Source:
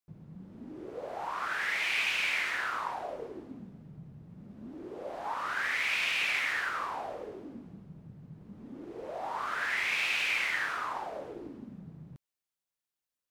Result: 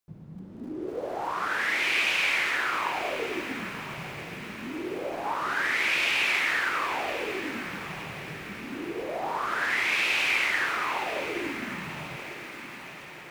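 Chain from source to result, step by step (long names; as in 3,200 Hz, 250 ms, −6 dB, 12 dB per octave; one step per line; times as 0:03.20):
dynamic equaliser 350 Hz, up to +6 dB, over −55 dBFS, Q 1.8
feedback delay with all-pass diffusion 1,038 ms, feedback 59%, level −12 dB
feedback echo at a low word length 273 ms, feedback 80%, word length 8 bits, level −13 dB
level +4.5 dB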